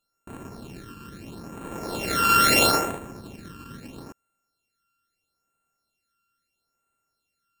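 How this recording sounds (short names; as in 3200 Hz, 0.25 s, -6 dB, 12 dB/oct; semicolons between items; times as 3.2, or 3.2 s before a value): a buzz of ramps at a fixed pitch in blocks of 32 samples; phasing stages 12, 0.76 Hz, lowest notch 660–4900 Hz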